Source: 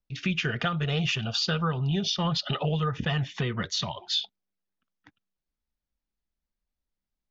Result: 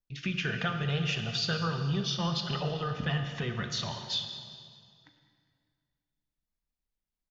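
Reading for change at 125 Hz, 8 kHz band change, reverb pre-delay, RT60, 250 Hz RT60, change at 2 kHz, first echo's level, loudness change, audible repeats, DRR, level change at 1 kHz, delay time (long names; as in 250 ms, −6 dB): −3.5 dB, can't be measured, 24 ms, 2.1 s, 2.4 s, −2.5 dB, −18.0 dB, −4.0 dB, 2, 5.5 dB, −3.5 dB, 202 ms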